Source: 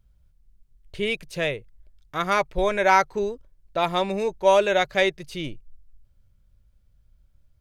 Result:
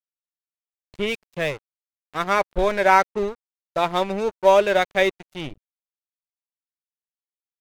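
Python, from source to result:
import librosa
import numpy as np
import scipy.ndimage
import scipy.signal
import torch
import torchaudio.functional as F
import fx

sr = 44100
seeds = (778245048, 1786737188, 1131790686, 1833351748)

y = fx.high_shelf(x, sr, hz=4100.0, db=-8.5)
y = np.sign(y) * np.maximum(np.abs(y) - 10.0 ** (-35.5 / 20.0), 0.0)
y = y * librosa.db_to_amplitude(3.5)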